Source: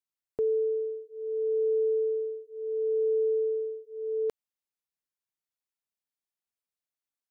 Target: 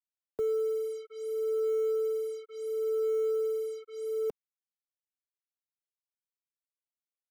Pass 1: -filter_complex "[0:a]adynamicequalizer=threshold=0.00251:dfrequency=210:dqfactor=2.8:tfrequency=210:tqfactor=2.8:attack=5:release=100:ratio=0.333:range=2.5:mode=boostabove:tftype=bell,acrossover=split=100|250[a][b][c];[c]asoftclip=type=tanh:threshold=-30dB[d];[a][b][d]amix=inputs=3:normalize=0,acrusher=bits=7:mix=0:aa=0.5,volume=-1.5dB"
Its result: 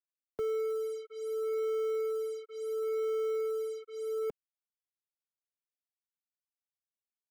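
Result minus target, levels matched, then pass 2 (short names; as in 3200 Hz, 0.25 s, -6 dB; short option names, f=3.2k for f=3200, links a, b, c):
soft clip: distortion +10 dB
-filter_complex "[0:a]adynamicequalizer=threshold=0.00251:dfrequency=210:dqfactor=2.8:tfrequency=210:tqfactor=2.8:attack=5:release=100:ratio=0.333:range=2.5:mode=boostabove:tftype=bell,acrossover=split=100|250[a][b][c];[c]asoftclip=type=tanh:threshold=-23dB[d];[a][b][d]amix=inputs=3:normalize=0,acrusher=bits=7:mix=0:aa=0.5,volume=-1.5dB"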